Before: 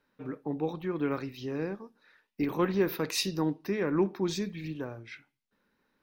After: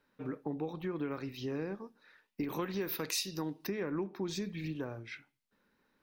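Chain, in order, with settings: 2.5–3.67 high shelf 2500 Hz +10.5 dB; compressor 6:1, threshold -33 dBFS, peak gain reduction 14.5 dB

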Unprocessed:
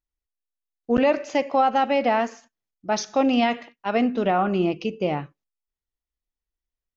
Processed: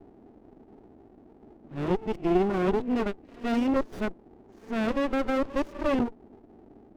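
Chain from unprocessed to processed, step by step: whole clip reversed; bell 390 Hz +12 dB 0.67 oct; notch 470 Hz, Q 12; band noise 210–450 Hz -44 dBFS; running maximum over 33 samples; gain -7.5 dB

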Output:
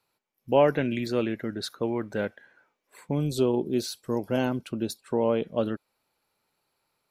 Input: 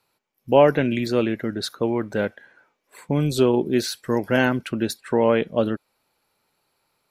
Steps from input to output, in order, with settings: 3.15–5.44 bell 1800 Hz -13 dB 0.75 oct; gain -5.5 dB

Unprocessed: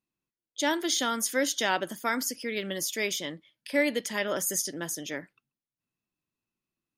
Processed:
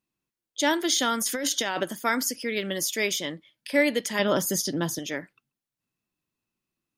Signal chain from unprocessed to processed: 1.21–1.83 negative-ratio compressor -31 dBFS, ratio -1; 4.19–4.99 graphic EQ 125/250/1000/2000/4000/8000 Hz +10/+6/+6/-5/+8/-7 dB; gain +3.5 dB

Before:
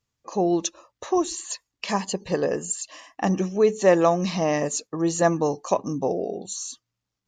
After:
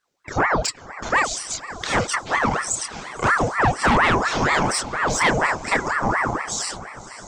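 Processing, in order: chorus voices 2, 0.38 Hz, delay 28 ms, depth 2.7 ms; diffused feedback echo 0.586 s, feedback 51%, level -16 dB; in parallel at -7 dB: sine folder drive 11 dB, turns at -8 dBFS; on the sum: ring modulator with a swept carrier 940 Hz, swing 70%, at 4.2 Hz

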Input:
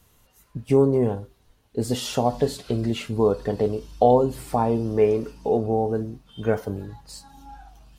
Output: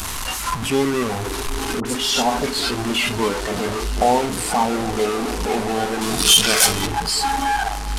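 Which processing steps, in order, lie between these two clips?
delta modulation 64 kbps, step -15.5 dBFS; swelling echo 0.157 s, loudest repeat 5, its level -18 dB; crackle 18/s -47 dBFS; 1.8–2.6 dispersion highs, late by 53 ms, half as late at 1400 Hz; 6.01–6.87 high shelf 2600 Hz +12 dB; spectral noise reduction 8 dB; ten-band EQ 125 Hz -11 dB, 500 Hz -9 dB, 1000 Hz +5 dB; gain +4 dB

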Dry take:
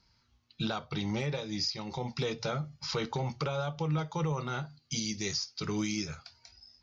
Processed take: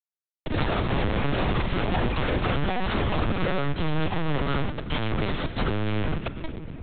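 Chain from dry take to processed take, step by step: in parallel at +3 dB: compressor 10:1, threshold -41 dBFS, peak gain reduction 14.5 dB; on the sum: Schmitt trigger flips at -36 dBFS; notch comb 240 Hz; on a send: thin delay 0.122 s, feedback 44%, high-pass 1600 Hz, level -18 dB; on the sum: echoes that change speed 95 ms, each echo +5 st, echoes 3; shoebox room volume 2600 m³, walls mixed, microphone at 0.56 m; LPC vocoder at 8 kHz pitch kept; three-band squash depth 70%; gain +7 dB

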